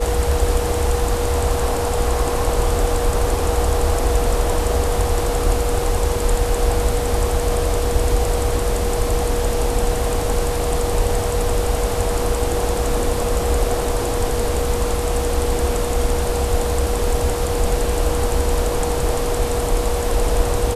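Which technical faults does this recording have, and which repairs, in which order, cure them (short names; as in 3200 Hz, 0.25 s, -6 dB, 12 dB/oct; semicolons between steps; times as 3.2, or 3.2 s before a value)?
tone 480 Hz -23 dBFS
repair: notch 480 Hz, Q 30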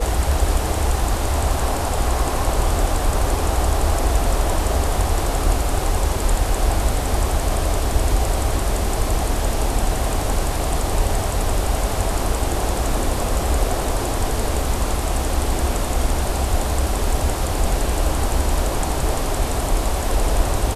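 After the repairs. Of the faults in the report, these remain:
none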